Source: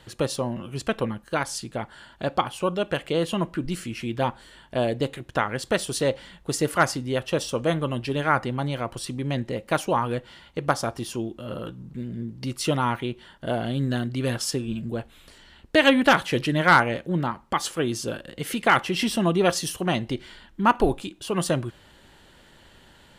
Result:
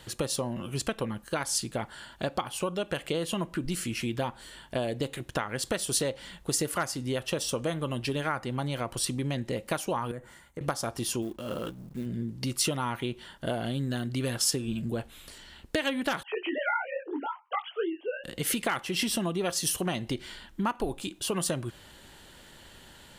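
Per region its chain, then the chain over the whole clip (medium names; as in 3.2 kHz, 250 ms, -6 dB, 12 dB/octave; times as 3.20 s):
10.11–10.61 s: high-order bell 3.7 kHz -13.5 dB 1.3 oct + compression, threshold -33 dBFS + three bands expanded up and down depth 70%
11.22–12.06 s: peaking EQ 110 Hz -6 dB 1.1 oct + hysteresis with a dead band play -47.5 dBFS + short-mantissa float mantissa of 4-bit
16.23–18.24 s: formants replaced by sine waves + high-pass 310 Hz 24 dB/octave + detune thickener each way 49 cents
whole clip: compression 6:1, threshold -27 dBFS; treble shelf 5.3 kHz +9 dB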